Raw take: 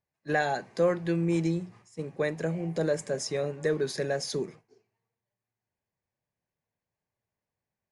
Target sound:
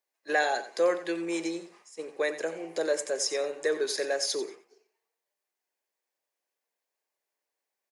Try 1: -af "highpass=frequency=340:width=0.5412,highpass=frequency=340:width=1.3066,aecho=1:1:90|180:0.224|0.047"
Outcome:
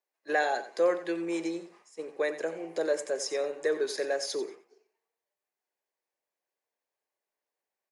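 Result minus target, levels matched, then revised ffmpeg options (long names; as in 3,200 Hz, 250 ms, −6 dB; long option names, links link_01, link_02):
4,000 Hz band −4.0 dB
-af "highpass=frequency=340:width=0.5412,highpass=frequency=340:width=1.3066,highshelf=frequency=2300:gain=6.5,aecho=1:1:90|180:0.224|0.047"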